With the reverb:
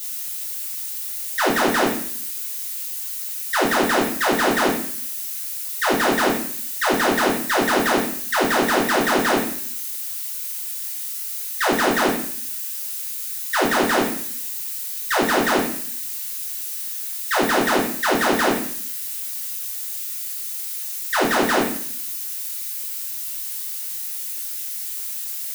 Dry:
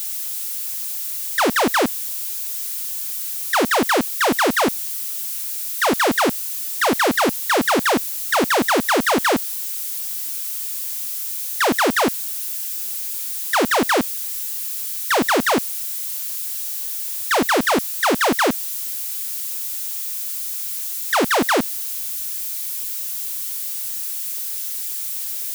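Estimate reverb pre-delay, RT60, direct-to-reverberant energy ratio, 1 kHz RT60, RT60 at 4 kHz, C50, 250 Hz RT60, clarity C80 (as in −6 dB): 3 ms, 0.55 s, −5.0 dB, 0.55 s, 0.55 s, 4.5 dB, 0.70 s, 8.5 dB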